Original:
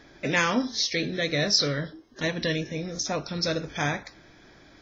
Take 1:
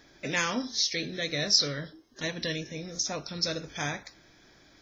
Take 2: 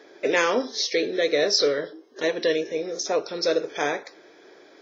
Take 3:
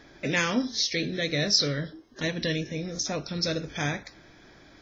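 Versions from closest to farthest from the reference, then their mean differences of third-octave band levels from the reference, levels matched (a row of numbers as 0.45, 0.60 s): 3, 1, 2; 1.0, 2.5, 5.0 dB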